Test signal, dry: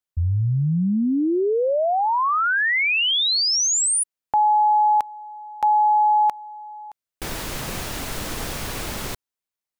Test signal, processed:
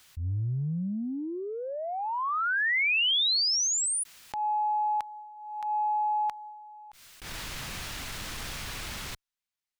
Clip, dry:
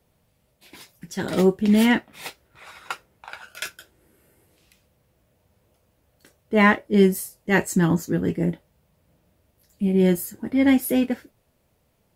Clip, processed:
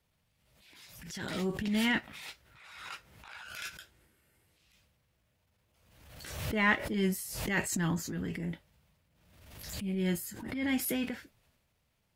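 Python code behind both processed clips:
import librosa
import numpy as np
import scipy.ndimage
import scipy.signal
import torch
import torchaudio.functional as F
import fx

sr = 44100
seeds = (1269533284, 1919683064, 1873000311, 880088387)

y = fx.tone_stack(x, sr, knobs='5-5-5')
y = fx.transient(y, sr, attack_db=-12, sustain_db=5)
y = fx.high_shelf(y, sr, hz=5900.0, db=-12.0)
y = fx.pre_swell(y, sr, db_per_s=51.0)
y = y * 10.0 ** (6.0 / 20.0)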